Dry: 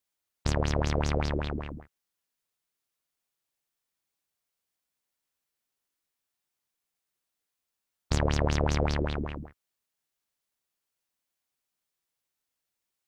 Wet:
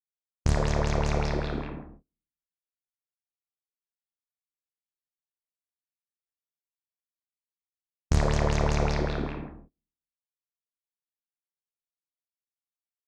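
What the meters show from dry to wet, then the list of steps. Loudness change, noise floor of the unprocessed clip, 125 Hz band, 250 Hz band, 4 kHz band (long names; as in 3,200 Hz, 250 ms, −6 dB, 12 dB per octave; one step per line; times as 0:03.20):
+1.5 dB, below −85 dBFS, +2.0 dB, +1.0 dB, −1.0 dB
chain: low-shelf EQ 120 Hz +7.5 dB
notch filter 2,900 Hz, Q 6.8
four-comb reverb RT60 0.79 s, combs from 26 ms, DRR 2.5 dB
low-pass that shuts in the quiet parts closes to 310 Hz, open at −26 dBFS
high-shelf EQ 7,000 Hz −4.5 dB
noise gate −49 dBFS, range −25 dB
highs frequency-modulated by the lows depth 0.33 ms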